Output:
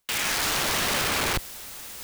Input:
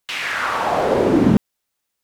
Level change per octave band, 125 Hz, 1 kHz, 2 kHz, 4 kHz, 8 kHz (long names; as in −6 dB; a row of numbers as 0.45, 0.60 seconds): −13.0, −8.5, −2.5, +4.5, +12.0 decibels